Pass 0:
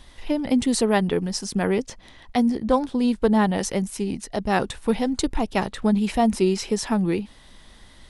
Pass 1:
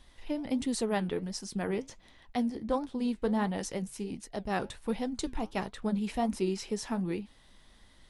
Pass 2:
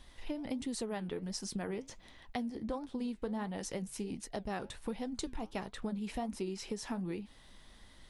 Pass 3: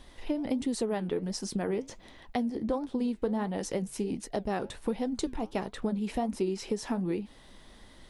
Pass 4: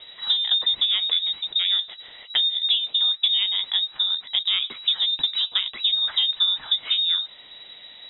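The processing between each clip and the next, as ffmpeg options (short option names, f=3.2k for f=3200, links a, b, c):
-af "flanger=delay=3.3:depth=7.5:regen=-76:speed=1.4:shape=triangular,volume=-6dB"
-af "acompressor=threshold=-37dB:ratio=5,volume=1.5dB"
-af "equalizer=f=400:w=0.58:g=6,volume=3dB"
-af "lowpass=f=3.3k:t=q:w=0.5098,lowpass=f=3.3k:t=q:w=0.6013,lowpass=f=3.3k:t=q:w=0.9,lowpass=f=3.3k:t=q:w=2.563,afreqshift=-3900,volume=8.5dB"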